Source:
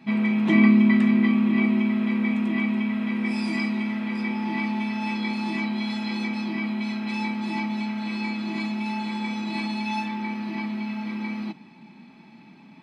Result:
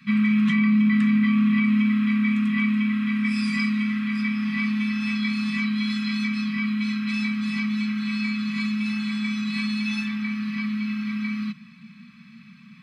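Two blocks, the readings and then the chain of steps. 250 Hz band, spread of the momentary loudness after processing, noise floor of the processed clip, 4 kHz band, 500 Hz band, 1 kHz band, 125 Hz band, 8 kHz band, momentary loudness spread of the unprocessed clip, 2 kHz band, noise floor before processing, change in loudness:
+1.0 dB, 8 LU, -48 dBFS, +3.0 dB, under -25 dB, -7.0 dB, +2.0 dB, no reading, 11 LU, +2.5 dB, -49 dBFS, +1.0 dB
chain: Chebyshev band-stop 230–1100 Hz, order 5; peak limiter -17.5 dBFS, peak gain reduction 8.5 dB; trim +4 dB

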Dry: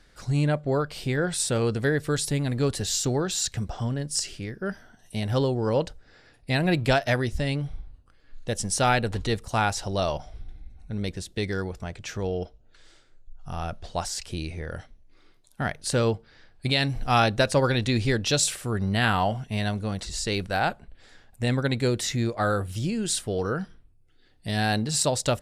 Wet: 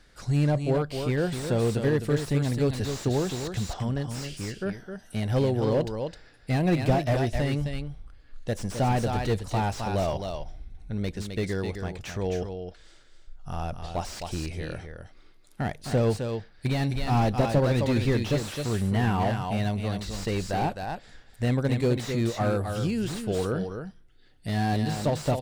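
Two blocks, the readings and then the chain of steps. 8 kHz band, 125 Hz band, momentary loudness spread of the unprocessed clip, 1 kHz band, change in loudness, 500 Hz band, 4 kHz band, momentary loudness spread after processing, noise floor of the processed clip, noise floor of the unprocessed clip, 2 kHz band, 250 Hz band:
-11.5 dB, +1.0 dB, 12 LU, -2.5 dB, -1.5 dB, -0.5 dB, -7.5 dB, 12 LU, -54 dBFS, -58 dBFS, -6.5 dB, +1.0 dB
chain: dynamic bell 1.4 kHz, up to -7 dB, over -43 dBFS, Q 2.3; on a send: delay 261 ms -7.5 dB; on the sum: slew-rate limiter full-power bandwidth 57 Hz

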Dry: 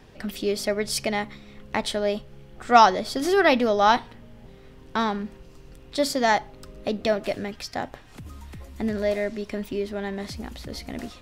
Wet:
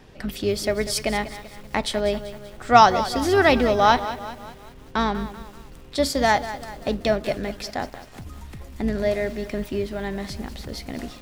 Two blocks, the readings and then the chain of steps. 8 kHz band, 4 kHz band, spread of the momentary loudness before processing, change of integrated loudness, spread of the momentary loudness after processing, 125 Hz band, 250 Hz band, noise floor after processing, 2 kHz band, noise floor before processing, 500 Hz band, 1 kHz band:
+2.0 dB, +2.0 dB, 18 LU, +1.5 dB, 21 LU, +6.0 dB, +2.0 dB, -45 dBFS, +2.0 dB, -48 dBFS, +1.5 dB, +2.0 dB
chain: octave divider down 2 oct, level -6 dB; bit-crushed delay 193 ms, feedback 55%, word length 7-bit, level -13 dB; trim +1.5 dB

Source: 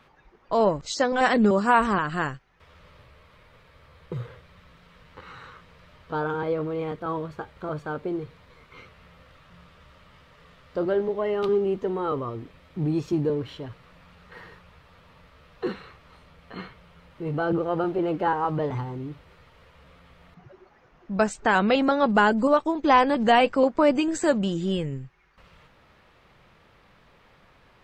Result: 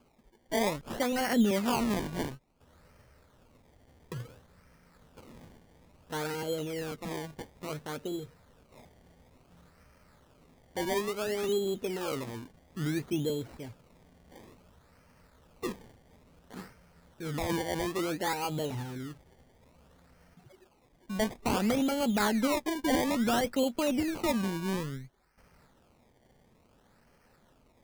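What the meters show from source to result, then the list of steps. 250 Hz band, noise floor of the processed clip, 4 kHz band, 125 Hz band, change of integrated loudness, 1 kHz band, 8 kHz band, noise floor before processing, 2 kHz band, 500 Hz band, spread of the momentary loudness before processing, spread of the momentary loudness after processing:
-5.0 dB, -65 dBFS, -2.5 dB, -6.0 dB, -7.5 dB, -11.5 dB, no reading, -58 dBFS, -9.0 dB, -8.5 dB, 18 LU, 16 LU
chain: band-stop 1.1 kHz, Q 5.5; decimation with a swept rate 23×, swing 100% 0.58 Hz; peak limiter -14.5 dBFS, peak gain reduction 6.5 dB; peaking EQ 240 Hz +6.5 dB 0.26 oct; trim -7 dB

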